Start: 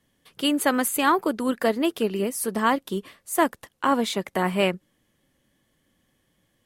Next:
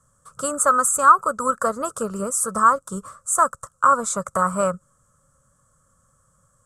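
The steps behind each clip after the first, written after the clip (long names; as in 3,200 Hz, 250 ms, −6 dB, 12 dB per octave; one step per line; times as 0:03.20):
drawn EQ curve 140 Hz 0 dB, 340 Hz −22 dB, 550 Hz −1 dB, 790 Hz −13 dB, 1,300 Hz +13 dB, 1,900 Hz −22 dB, 3,000 Hz −27 dB, 4,700 Hz −14 dB, 7,800 Hz +10 dB, 15,000 Hz −22 dB
in parallel at +2 dB: downward compressor, threshold −30 dBFS, peak gain reduction 18 dB
on the sum: level +2 dB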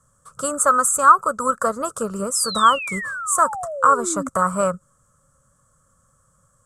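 sound drawn into the spectrogram fall, 0:02.35–0:04.29, 250–5,400 Hz −30 dBFS
level +1 dB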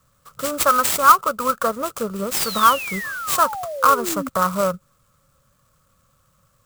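converter with an unsteady clock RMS 0.027 ms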